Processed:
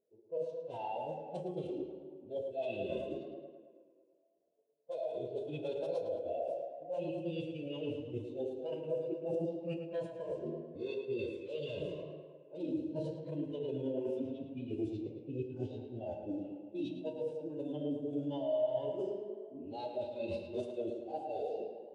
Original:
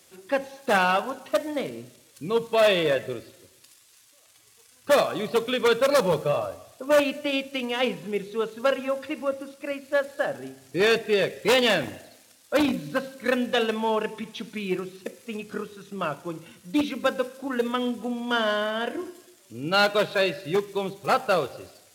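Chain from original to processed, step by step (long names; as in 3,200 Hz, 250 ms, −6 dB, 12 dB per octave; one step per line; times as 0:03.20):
brickwall limiter −16 dBFS, peak gain reduction 7.5 dB
high-pass filter 200 Hz 12 dB per octave
harmonic and percussive parts rebalanced harmonic +8 dB
flat-topped bell 1,600 Hz −14.5 dB 1.1 octaves
low-pass that shuts in the quiet parts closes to 850 Hz, open at −19.5 dBFS
reversed playback
downward compressor 20 to 1, threshold −31 dBFS, peak gain reduction 19 dB
reversed playback
phase-vocoder pitch shift with formants kept −9 semitones
tape delay 109 ms, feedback 80%, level −4 dB, low-pass 4,500 Hz
on a send at −9 dB: convolution reverb RT60 0.85 s, pre-delay 19 ms
on the sum: every bin expanded away from the loudest bin 1.5 to 1
level −4.5 dB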